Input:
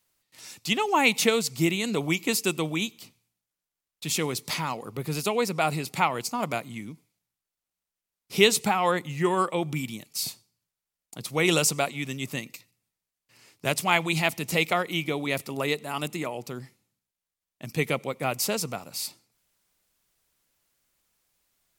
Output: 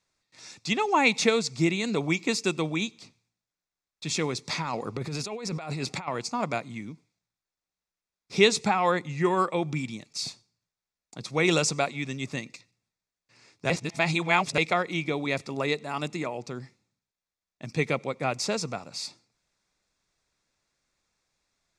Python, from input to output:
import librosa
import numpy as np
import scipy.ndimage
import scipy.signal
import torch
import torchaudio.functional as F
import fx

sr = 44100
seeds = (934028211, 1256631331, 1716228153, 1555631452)

y = fx.over_compress(x, sr, threshold_db=-33.0, ratio=-1.0, at=(4.62, 6.08))
y = fx.edit(y, sr, fx.reverse_span(start_s=13.7, length_s=0.88), tone=tone)
y = scipy.signal.sosfilt(scipy.signal.butter(4, 7000.0, 'lowpass', fs=sr, output='sos'), y)
y = fx.notch(y, sr, hz=3000.0, q=5.8)